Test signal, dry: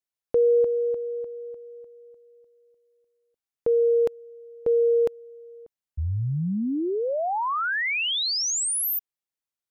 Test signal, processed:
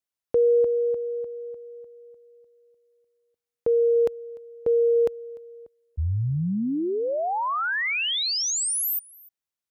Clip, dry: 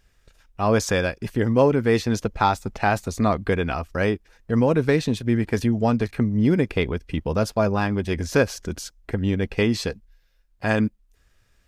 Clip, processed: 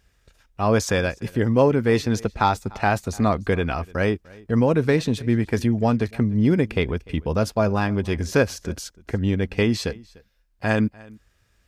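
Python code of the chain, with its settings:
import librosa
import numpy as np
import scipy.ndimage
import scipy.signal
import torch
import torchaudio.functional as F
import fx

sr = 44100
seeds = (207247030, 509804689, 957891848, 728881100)

p1 = scipy.signal.sosfilt(scipy.signal.butter(2, 48.0, 'highpass', fs=sr, output='sos'), x)
p2 = fx.low_shelf(p1, sr, hz=67.0, db=5.5)
y = p2 + fx.echo_single(p2, sr, ms=297, db=-23.5, dry=0)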